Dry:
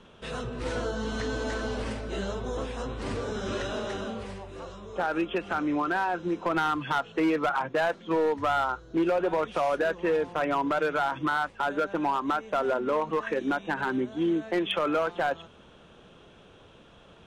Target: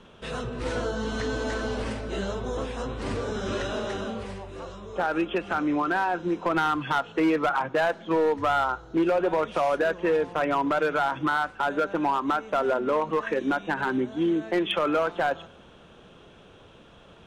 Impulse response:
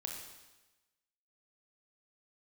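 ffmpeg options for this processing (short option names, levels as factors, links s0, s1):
-filter_complex "[0:a]asplit=2[s0][s1];[1:a]atrim=start_sample=2205,lowpass=3800[s2];[s1][s2]afir=irnorm=-1:irlink=0,volume=0.119[s3];[s0][s3]amix=inputs=2:normalize=0,volume=1.19"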